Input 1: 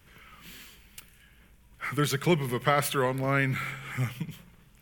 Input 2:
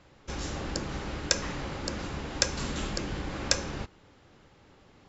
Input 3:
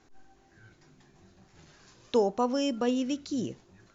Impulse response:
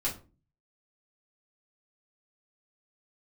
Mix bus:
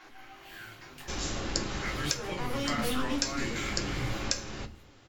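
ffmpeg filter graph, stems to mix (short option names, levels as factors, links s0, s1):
-filter_complex "[0:a]flanger=delay=16:depth=3.2:speed=0.48,volume=0.531,asplit=2[s0][s1];[s1]volume=0.355[s2];[1:a]adelay=800,volume=0.668,asplit=2[s3][s4];[s4]volume=0.335[s5];[2:a]asplit=2[s6][s7];[s7]highpass=f=720:p=1,volume=56.2,asoftclip=type=tanh:threshold=0.211[s8];[s6][s8]amix=inputs=2:normalize=0,lowpass=f=1600:p=1,volume=0.501,volume=0.178,asplit=3[s9][s10][s11];[s10]volume=0.531[s12];[s11]apad=whole_len=259550[s13];[s3][s13]sidechaincompress=threshold=0.00631:ratio=8:attack=16:release=555[s14];[s0][s9]amix=inputs=2:normalize=0,highpass=720,lowpass=4600,alimiter=level_in=2.82:limit=0.0631:level=0:latency=1,volume=0.355,volume=1[s15];[3:a]atrim=start_sample=2205[s16];[s2][s5][s12]amix=inputs=3:normalize=0[s17];[s17][s16]afir=irnorm=-1:irlink=0[s18];[s14][s15][s18]amix=inputs=3:normalize=0,highshelf=f=2700:g=7.5,alimiter=limit=0.398:level=0:latency=1:release=494"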